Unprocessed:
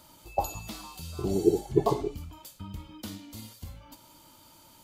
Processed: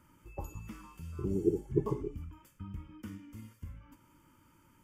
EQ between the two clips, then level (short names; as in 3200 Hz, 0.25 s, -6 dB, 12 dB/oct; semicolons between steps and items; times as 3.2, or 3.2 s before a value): LPF 2200 Hz 6 dB/oct; dynamic EQ 1700 Hz, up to -7 dB, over -46 dBFS, Q 0.87; fixed phaser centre 1700 Hz, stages 4; -2.0 dB